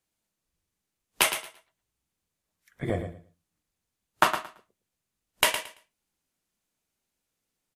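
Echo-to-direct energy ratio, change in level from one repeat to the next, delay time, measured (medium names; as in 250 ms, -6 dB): -9.5 dB, -14.5 dB, 112 ms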